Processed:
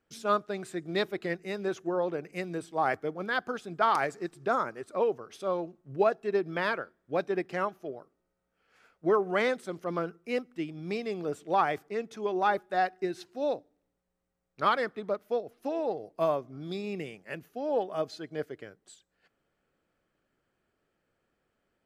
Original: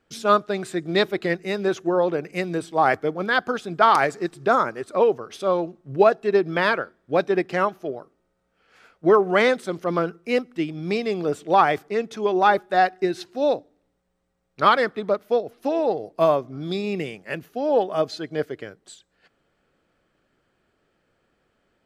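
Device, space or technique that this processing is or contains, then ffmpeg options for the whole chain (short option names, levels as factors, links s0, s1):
exciter from parts: -filter_complex "[0:a]asplit=2[s0][s1];[s1]highpass=f=3500:w=0.5412,highpass=f=3500:w=1.3066,asoftclip=type=tanh:threshold=0.0251,volume=0.266[s2];[s0][s2]amix=inputs=2:normalize=0,volume=0.355"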